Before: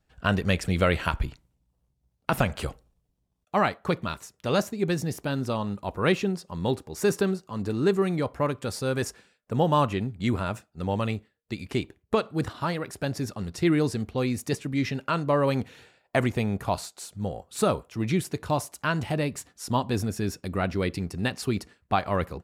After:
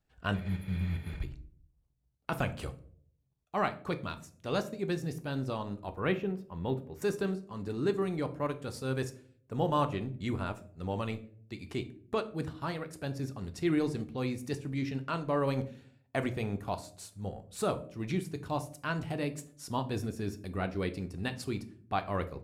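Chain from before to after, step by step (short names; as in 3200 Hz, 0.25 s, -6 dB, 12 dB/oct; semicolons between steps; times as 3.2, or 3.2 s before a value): 0.36–1.17 spectral repair 220–9700 Hz after; 6–7.02 band shelf 6500 Hz -12 dB; transient shaper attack -3 dB, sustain -7 dB; on a send: reverb RT60 0.55 s, pre-delay 3 ms, DRR 9 dB; on the sum: gain -6.5 dB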